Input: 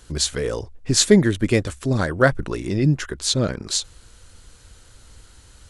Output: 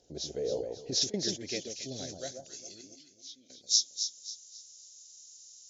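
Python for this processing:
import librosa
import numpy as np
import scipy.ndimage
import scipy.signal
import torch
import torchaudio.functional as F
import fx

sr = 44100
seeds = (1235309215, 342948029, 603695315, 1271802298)

y = fx.freq_compress(x, sr, knee_hz=3100.0, ratio=1.5)
y = fx.over_compress(y, sr, threshold_db=-18.0, ratio=-0.5, at=(0.56, 1.14))
y = fx.low_shelf(y, sr, hz=400.0, db=9.5, at=(1.76, 2.19))
y = fx.vowel_filter(y, sr, vowel='i', at=(2.81, 3.5))
y = fx.echo_alternate(y, sr, ms=135, hz=1000.0, feedback_pct=59, wet_db=-3.5)
y = fx.filter_sweep_bandpass(y, sr, from_hz=790.0, to_hz=7200.0, start_s=0.61, end_s=2.54, q=1.0)
y = fx.curve_eq(y, sr, hz=(710.0, 1100.0, 6200.0), db=(0, -28, 11))
y = y * librosa.db_to_amplitude(-4.0)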